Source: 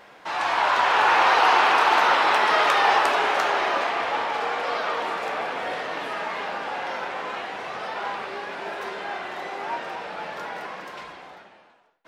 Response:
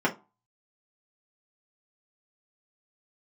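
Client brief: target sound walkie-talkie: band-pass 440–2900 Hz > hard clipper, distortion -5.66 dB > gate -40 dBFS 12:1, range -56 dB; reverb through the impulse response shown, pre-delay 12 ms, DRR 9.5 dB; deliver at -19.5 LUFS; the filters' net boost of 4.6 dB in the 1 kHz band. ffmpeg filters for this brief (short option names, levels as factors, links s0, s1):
-filter_complex "[0:a]equalizer=f=1000:t=o:g=6,asplit=2[s0][s1];[1:a]atrim=start_sample=2205,adelay=12[s2];[s1][s2]afir=irnorm=-1:irlink=0,volume=0.075[s3];[s0][s3]amix=inputs=2:normalize=0,highpass=440,lowpass=2900,asoftclip=type=hard:threshold=0.106,agate=range=0.00158:threshold=0.01:ratio=12,volume=1.68"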